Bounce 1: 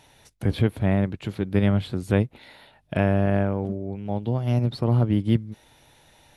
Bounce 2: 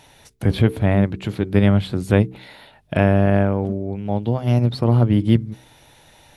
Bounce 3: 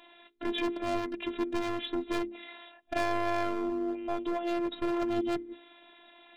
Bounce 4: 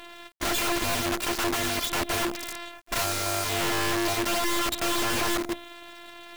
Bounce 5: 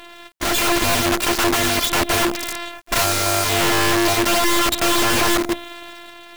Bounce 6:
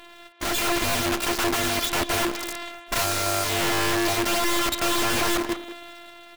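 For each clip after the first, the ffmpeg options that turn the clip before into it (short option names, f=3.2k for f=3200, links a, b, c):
-af "bandreject=f=63.54:t=h:w=4,bandreject=f=127.08:t=h:w=4,bandreject=f=190.62:t=h:w=4,bandreject=f=254.16:t=h:w=4,bandreject=f=317.7:t=h:w=4,bandreject=f=381.24:t=h:w=4,bandreject=f=444.78:t=h:w=4,volume=5.5dB"
-af "afftfilt=real='re*between(b*sr/4096,140,4000)':imag='im*between(b*sr/4096,140,4000)':win_size=4096:overlap=0.75,asoftclip=type=hard:threshold=-21.5dB,afftfilt=real='hypot(re,im)*cos(PI*b)':imag='0':win_size=512:overlap=0.75"
-filter_complex "[0:a]asplit=2[a][b];[b]alimiter=level_in=1.5dB:limit=-24dB:level=0:latency=1:release=195,volume=-1.5dB,volume=-2dB[c];[a][c]amix=inputs=2:normalize=0,acrusher=bits=7:dc=4:mix=0:aa=0.000001,aeval=exprs='(mod(29.9*val(0)+1,2)-1)/29.9':c=same,volume=7.5dB"
-af "dynaudnorm=f=110:g=9:m=5dB,volume=4dB"
-filter_complex "[0:a]asplit=2[a][b];[b]adelay=190,highpass=300,lowpass=3.4k,asoftclip=type=hard:threshold=-21dB,volume=-7dB[c];[a][c]amix=inputs=2:normalize=0,volume=-6dB"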